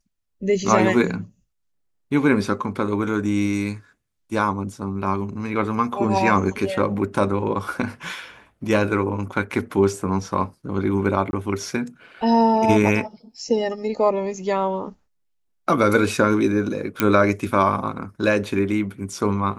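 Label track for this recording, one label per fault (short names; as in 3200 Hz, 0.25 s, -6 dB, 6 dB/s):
11.310000	11.330000	gap 21 ms
17.000000	17.000000	pop -3 dBFS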